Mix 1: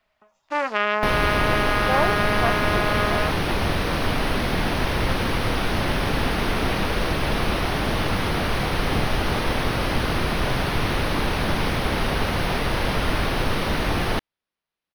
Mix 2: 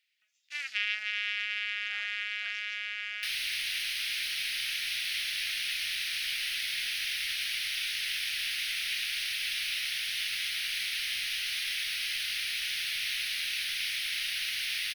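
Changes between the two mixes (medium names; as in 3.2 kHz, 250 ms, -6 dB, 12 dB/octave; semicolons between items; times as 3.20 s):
second sound: entry +2.20 s; master: add inverse Chebyshev high-pass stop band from 1.1 kHz, stop band 40 dB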